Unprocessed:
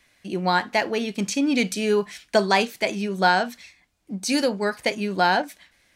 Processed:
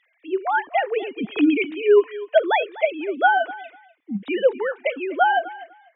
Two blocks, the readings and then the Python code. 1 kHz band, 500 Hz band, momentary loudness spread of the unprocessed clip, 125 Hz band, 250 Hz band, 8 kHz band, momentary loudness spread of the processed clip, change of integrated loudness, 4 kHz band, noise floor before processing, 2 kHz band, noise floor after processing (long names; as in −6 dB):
+2.0 dB, +4.5 dB, 7 LU, below −10 dB, −0.5 dB, below −40 dB, 12 LU, +2.0 dB, −7.0 dB, −63 dBFS, +1.0 dB, −67 dBFS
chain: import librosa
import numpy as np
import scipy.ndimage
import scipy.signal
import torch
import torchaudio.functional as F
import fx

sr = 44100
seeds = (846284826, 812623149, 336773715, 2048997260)

y = fx.sine_speech(x, sr)
y = fx.echo_feedback(y, sr, ms=248, feedback_pct=17, wet_db=-18)
y = F.gain(torch.from_numpy(y), 2.0).numpy()